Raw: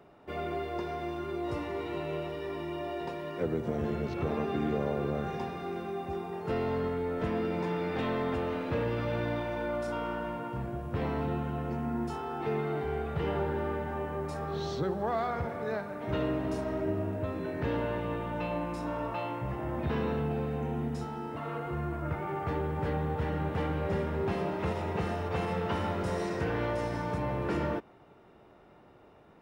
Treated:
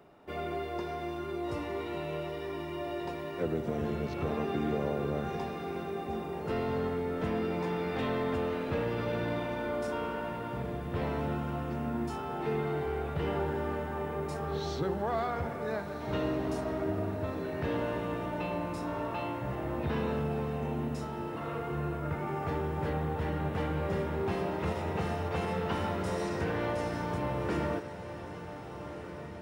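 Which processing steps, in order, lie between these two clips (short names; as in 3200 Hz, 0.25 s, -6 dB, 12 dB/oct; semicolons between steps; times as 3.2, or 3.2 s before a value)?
high shelf 5400 Hz +4.5 dB; notches 60/120 Hz; on a send: diffused feedback echo 1.538 s, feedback 58%, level -11 dB; on the sum: gain -1 dB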